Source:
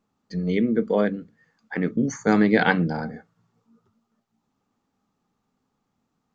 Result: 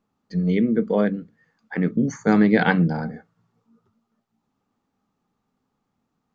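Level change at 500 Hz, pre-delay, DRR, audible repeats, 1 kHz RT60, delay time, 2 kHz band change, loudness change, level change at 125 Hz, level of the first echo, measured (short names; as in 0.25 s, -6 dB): 0.0 dB, none, none, none, none, none, -0.5 dB, +1.5 dB, +4.0 dB, none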